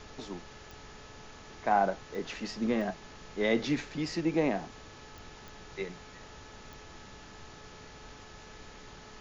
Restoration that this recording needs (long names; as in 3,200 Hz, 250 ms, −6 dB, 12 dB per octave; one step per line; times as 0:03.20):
click removal
hum removal 429.5 Hz, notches 4
noise reduction from a noise print 27 dB